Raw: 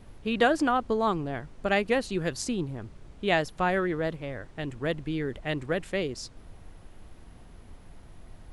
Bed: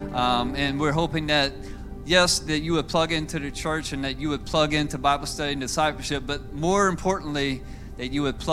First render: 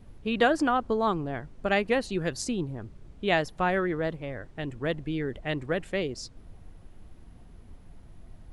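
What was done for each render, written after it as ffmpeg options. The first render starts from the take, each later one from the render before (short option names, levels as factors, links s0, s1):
-af "afftdn=nr=6:nf=-50"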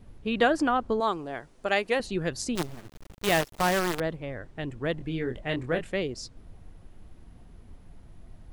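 -filter_complex "[0:a]asettb=1/sr,asplit=3[s0][s1][s2];[s0]atrim=end=1.004[s3];[s1]atrim=start=1:end=2,asetpts=PTS-STARTPTS,afade=t=in:d=0.004:c=qsin,afade=t=out:st=0.996:d=0.004:c=qsin,bass=f=250:g=-12,treble=f=4000:g=7[s4];[s2]atrim=start=1.996[s5];[s3][s4]acrossfade=d=0.004:c1=hsin:c2=qsin[s6];[s6][s5]acrossfade=d=0.004:c1=qsin:c2=hsin,asettb=1/sr,asplit=3[s7][s8][s9];[s7]atrim=end=2.554[s10];[s8]atrim=start=2.55:end=4,asetpts=PTS-STARTPTS,afade=t=in:d=0.004:c=qsin,afade=t=out:st=1.446:d=0.004:c=qsin,acrusher=bits=5:dc=4:mix=0:aa=0.000001[s11];[s9]atrim=start=3.996[s12];[s10][s11]acrossfade=d=0.004:c1=hsin:c2=qsin[s13];[s13][s12]acrossfade=d=0.004:c1=qsin:c2=hsin,asettb=1/sr,asplit=3[s14][s15][s16];[s14]atrim=end=4.964[s17];[s15]atrim=start=4.96:end=5.87,asetpts=PTS-STARTPTS,afade=t=in:d=0.004:c=qsin,afade=t=out:st=0.906:d=0.004:c=qsin,asplit=2[s18][s19];[s19]adelay=24,volume=0.501[s20];[s18][s20]amix=inputs=2:normalize=0,atrim=end_sample=40131[s21];[s16]atrim=start=5.866[s22];[s17][s21]acrossfade=d=0.004:c1=hsin:c2=qsin[s23];[s23][s22]acrossfade=d=0.004:c1=qsin:c2=hsin"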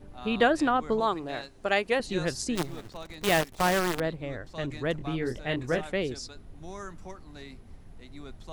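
-filter_complex "[1:a]volume=0.0944[s0];[0:a][s0]amix=inputs=2:normalize=0"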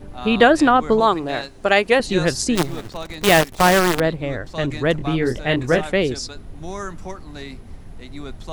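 -af "volume=3.35,alimiter=limit=0.891:level=0:latency=1"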